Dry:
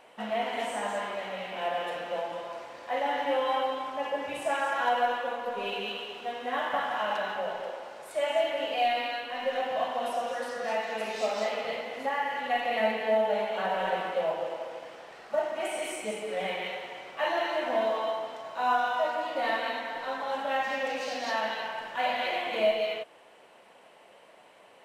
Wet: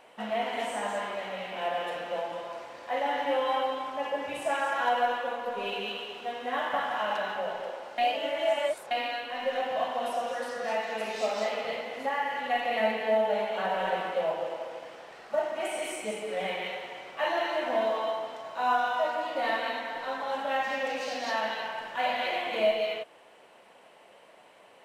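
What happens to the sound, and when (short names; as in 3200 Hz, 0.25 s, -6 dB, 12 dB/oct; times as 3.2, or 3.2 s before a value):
7.98–8.91 reverse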